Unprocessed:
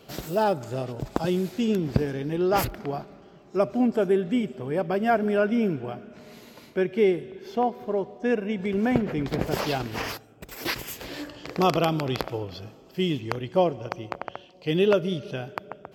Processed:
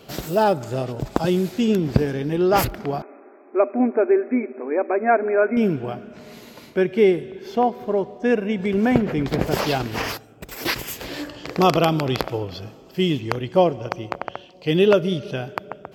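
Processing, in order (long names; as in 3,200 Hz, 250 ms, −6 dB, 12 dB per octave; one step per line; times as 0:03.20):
0:03.02–0:05.57: linear-phase brick-wall band-pass 230–2,600 Hz
level +5 dB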